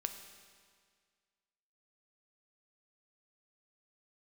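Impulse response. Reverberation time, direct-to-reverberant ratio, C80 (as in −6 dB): 1.9 s, 6.5 dB, 9.0 dB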